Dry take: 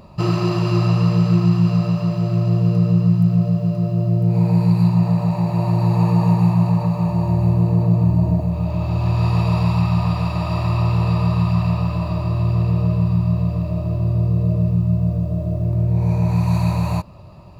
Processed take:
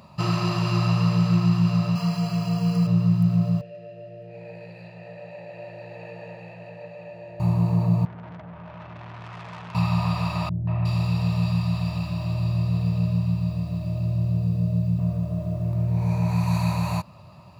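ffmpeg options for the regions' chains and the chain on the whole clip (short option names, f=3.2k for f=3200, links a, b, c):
-filter_complex "[0:a]asettb=1/sr,asplit=3[a][b][c];[a]atrim=end=1.954[d];[b]atrim=start=1.95:end=2.87,asetpts=PTS-STARTPTS,afade=t=in:d=0.004:c=qsin,afade=t=out:st=0.916:d=0.004:c=qsin,asuperstop=centerf=3700:order=20:qfactor=6.8,highshelf=f=3.9k:g=7.5,aecho=1:1:4.2:0.68,atrim=end_sample=40572[e];[c]atrim=start=2.866[f];[d][e]acrossfade=d=0.004:c1=hsin:c2=qsin[g];[g][f]acrossfade=d=0.004:c1=qsin:c2=hsin,asettb=1/sr,asplit=3[h][i][j];[h]atrim=end=3.614[k];[i]atrim=start=3.61:end=7.4,asetpts=PTS-STARTPTS,afade=t=in:d=0.004:c=qsin,afade=t=out:st=3.786:d=0.004:c=qsin,equalizer=f=180:t=o:w=0.25:g=-7,acontrast=53,asplit=3[l][m][n];[l]bandpass=f=530:t=q:w=8,volume=0dB[o];[m]bandpass=f=1.84k:t=q:w=8,volume=-6dB[p];[n]bandpass=f=2.48k:t=q:w=8,volume=-9dB[q];[o][p][q]amix=inputs=3:normalize=0[r];[j]atrim=start=7.396[s];[k][r]acrossfade=d=0.004:c1=hsin:c2=qsin[t];[t][s]acrossfade=d=0.004:c1=qsin:c2=hsin,asettb=1/sr,asplit=3[u][v][w];[u]atrim=end=8.054[x];[v]atrim=start=8.05:end=9.75,asetpts=PTS-STARTPTS,afade=t=in:d=0.004:c=qsin,afade=t=out:st=1.696:d=0.004:c=qsin,lowpass=f=2.3k:w=0.5412,lowpass=f=2.3k:w=1.3066,lowshelf=f=240:g=-11.5,aeval=exprs='(tanh(44.7*val(0)+0.4)-tanh(0.4))/44.7':c=same[y];[w]atrim=start=9.746[z];[x][y]acrossfade=d=0.004:c1=hsin:c2=qsin[aa];[aa][z]acrossfade=d=0.004:c1=qsin:c2=hsin,asettb=1/sr,asplit=3[ab][ac][ad];[ab]atrim=end=10.494[ae];[ac]atrim=start=10.49:end=14.99,asetpts=PTS-STARTPTS,afade=t=in:d=0.004:c=qsin,afade=t=out:st=4.496:d=0.004:c=qsin,equalizer=f=1.1k:t=o:w=0.99:g=-9.5,acrossover=split=400|2200[af][ag][ah];[ag]adelay=180[ai];[ah]adelay=360[aj];[af][ai][aj]amix=inputs=3:normalize=0,atrim=end_sample=198450[ak];[ad]atrim=start=14.986[al];[ae][ak]acrossfade=d=0.004:c1=hsin:c2=qsin[am];[am][al]acrossfade=d=0.004:c1=qsin:c2=hsin,highpass=130,equalizer=f=370:w=1:g=-10.5"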